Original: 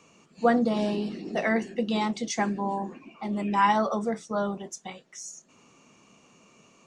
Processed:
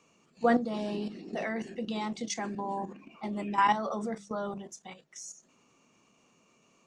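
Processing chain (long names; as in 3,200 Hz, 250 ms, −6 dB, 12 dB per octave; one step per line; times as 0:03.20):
output level in coarse steps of 11 dB
mains-hum notches 50/100/150/200 Hz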